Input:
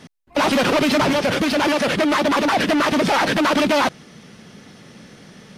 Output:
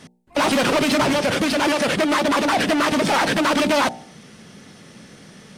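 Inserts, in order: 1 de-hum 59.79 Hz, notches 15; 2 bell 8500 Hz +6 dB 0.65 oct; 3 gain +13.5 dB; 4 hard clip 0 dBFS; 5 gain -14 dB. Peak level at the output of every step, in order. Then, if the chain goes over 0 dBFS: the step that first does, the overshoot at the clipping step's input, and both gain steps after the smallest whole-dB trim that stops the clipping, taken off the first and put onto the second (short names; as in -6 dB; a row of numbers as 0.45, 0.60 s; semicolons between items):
-9.0, -8.5, +5.0, 0.0, -14.0 dBFS; step 3, 5.0 dB; step 3 +8.5 dB, step 5 -9 dB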